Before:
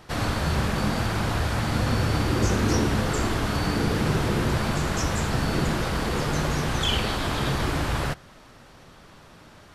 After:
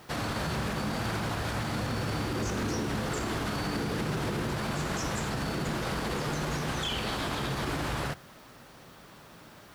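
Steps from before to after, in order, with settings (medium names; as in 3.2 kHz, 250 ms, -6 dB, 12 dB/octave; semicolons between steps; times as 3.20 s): high-pass 52 Hz; peaking EQ 81 Hz -10.5 dB 0.41 oct; peak limiter -21.5 dBFS, peak gain reduction 9.5 dB; added noise blue -63 dBFS; trim -1.5 dB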